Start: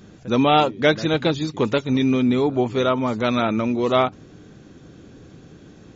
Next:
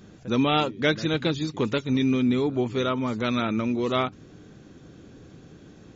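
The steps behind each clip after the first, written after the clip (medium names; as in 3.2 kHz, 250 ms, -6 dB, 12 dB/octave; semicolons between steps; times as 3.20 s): dynamic bell 720 Hz, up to -7 dB, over -32 dBFS, Q 1.3; trim -3 dB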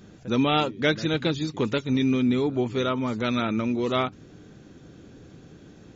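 band-stop 1.1 kHz, Q 25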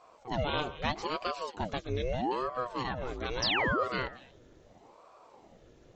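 repeats whose band climbs or falls 117 ms, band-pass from 940 Hz, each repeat 1.4 oct, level -11 dB; painted sound fall, 3.42–3.84 s, 290–5800 Hz -20 dBFS; ring modulator with a swept carrier 520 Hz, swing 70%, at 0.78 Hz; trim -6.5 dB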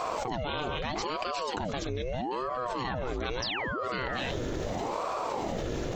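level flattener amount 100%; trim -5.5 dB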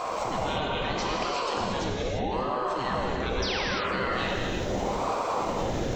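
reverberation, pre-delay 3 ms, DRR -2 dB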